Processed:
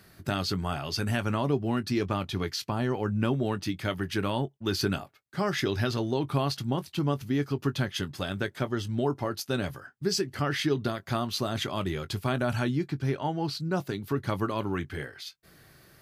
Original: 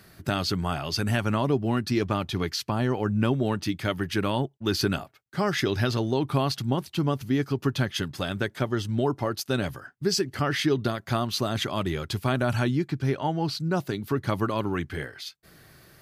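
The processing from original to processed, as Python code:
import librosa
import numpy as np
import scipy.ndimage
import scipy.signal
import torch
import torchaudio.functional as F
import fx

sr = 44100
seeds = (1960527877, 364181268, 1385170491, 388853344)

y = fx.doubler(x, sr, ms=21.0, db=-14)
y = y * 10.0 ** (-3.0 / 20.0)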